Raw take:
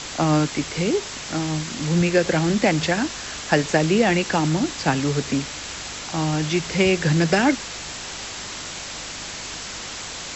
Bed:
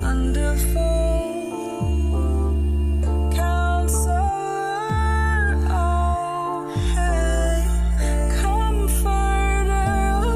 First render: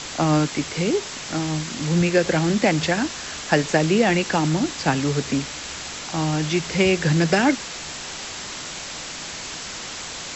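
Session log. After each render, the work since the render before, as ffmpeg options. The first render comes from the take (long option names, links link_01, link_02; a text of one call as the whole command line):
ffmpeg -i in.wav -af "bandreject=frequency=50:width_type=h:width=4,bandreject=frequency=100:width_type=h:width=4" out.wav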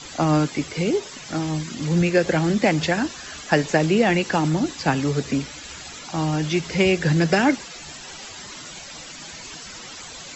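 ffmpeg -i in.wav -af "afftdn=noise_reduction=13:noise_floor=-34" out.wav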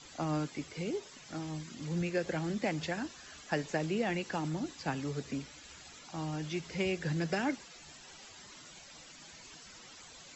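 ffmpeg -i in.wav -af "volume=-14.5dB" out.wav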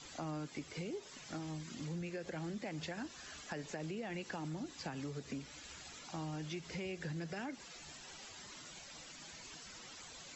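ffmpeg -i in.wav -af "alimiter=level_in=4dB:limit=-24dB:level=0:latency=1:release=102,volume=-4dB,acompressor=threshold=-41dB:ratio=3" out.wav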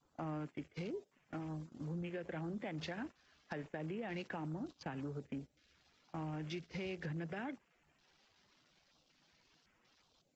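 ffmpeg -i in.wav -af "afwtdn=0.002,agate=range=-17dB:threshold=-47dB:ratio=16:detection=peak" out.wav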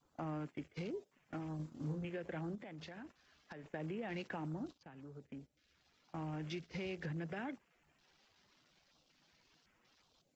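ffmpeg -i in.wav -filter_complex "[0:a]asettb=1/sr,asplit=3[link_01][link_02][link_03];[link_01]atrim=end=1.564[link_04];[link_02]atrim=start=1.56:end=2.05,asetpts=PTS-STARTPTS,afade=type=in:duration=0.004:curve=qsin,afade=type=out:start_time=0.486:duration=0.004:curve=qsin,asplit=2[link_05][link_06];[link_06]adelay=33,volume=-4dB[link_07];[link_05][link_07]amix=inputs=2:normalize=0,atrim=end_sample=21609[link_08];[link_03]atrim=start=2.046[link_09];[link_04][link_08]acrossfade=duration=0.004:curve1=hsin:curve2=qsin[link_10];[link_10][link_09]acrossfade=duration=0.004:curve1=qsin:curve2=hsin,asettb=1/sr,asplit=3[link_11][link_12][link_13];[link_11]atrim=end=2.554[link_14];[link_12]atrim=start=2.55:end=3.66,asetpts=PTS-STARTPTS,afade=type=in:duration=0.004:curve=qsin,afade=type=out:start_time=1.106:duration=0.004:curve=qsin,acompressor=threshold=-48dB:ratio=4:attack=3.2:release=140:knee=1:detection=peak[link_15];[link_13]atrim=start=3.656[link_16];[link_14][link_15]acrossfade=duration=0.004:curve1=hsin:curve2=qsin[link_17];[link_17][link_16]acrossfade=duration=0.004:curve1=qsin:curve2=hsin,asplit=2[link_18][link_19];[link_18]atrim=end=4.78,asetpts=PTS-STARTPTS,afade=type=out:start_time=4.776:duration=0.004:curve=hsin:silence=0.177828[link_20];[link_19]atrim=start=4.78,asetpts=PTS-STARTPTS,afade=type=in:duration=1.54:silence=0.177828[link_21];[link_20][link_21]concat=n=2:v=0:a=1" out.wav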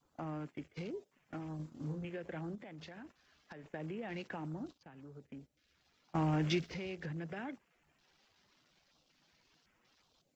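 ffmpeg -i in.wav -filter_complex "[0:a]asplit=3[link_01][link_02][link_03];[link_01]atrim=end=6.152[link_04];[link_02]atrim=start=6.148:end=6.742,asetpts=PTS-STARTPTS,volume=10.5dB[link_05];[link_03]atrim=start=6.738[link_06];[link_04][link_05]acrossfade=duration=0.004:curve1=hsin:curve2=hsin[link_07];[link_07][link_06]acrossfade=duration=0.004:curve1=hsin:curve2=hsin" out.wav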